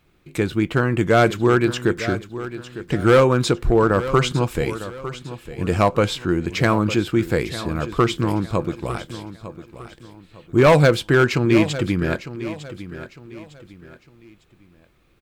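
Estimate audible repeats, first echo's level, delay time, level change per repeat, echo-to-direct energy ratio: 3, -13.5 dB, 904 ms, -9.5 dB, -13.0 dB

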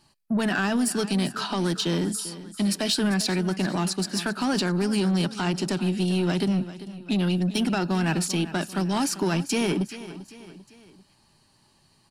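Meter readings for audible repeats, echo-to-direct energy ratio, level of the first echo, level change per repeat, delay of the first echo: 3, -14.0 dB, -15.0 dB, -6.5 dB, 394 ms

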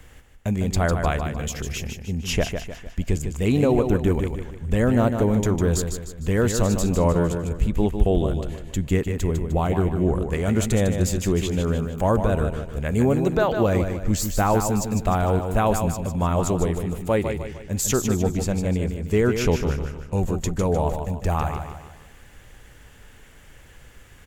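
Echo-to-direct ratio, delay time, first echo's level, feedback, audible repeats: -6.0 dB, 152 ms, -7.0 dB, 43%, 4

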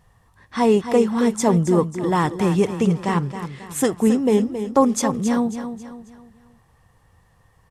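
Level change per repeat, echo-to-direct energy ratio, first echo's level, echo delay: -8.0 dB, -9.5 dB, -10.0 dB, 271 ms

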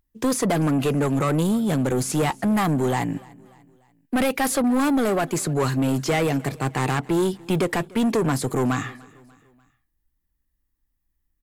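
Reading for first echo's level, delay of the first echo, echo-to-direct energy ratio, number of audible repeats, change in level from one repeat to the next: -23.5 dB, 294 ms, -22.5 dB, 2, -6.5 dB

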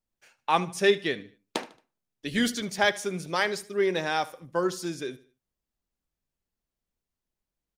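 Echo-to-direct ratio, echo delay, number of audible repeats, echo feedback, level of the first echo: -18.5 dB, 75 ms, 2, 37%, -19.0 dB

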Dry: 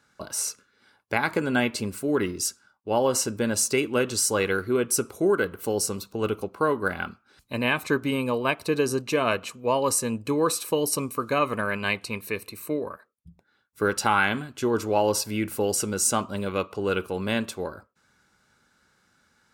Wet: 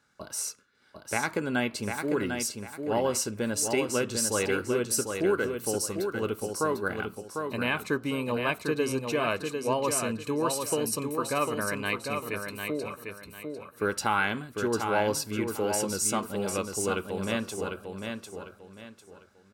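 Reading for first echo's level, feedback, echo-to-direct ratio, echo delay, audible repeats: -5.5 dB, 30%, -5.0 dB, 749 ms, 3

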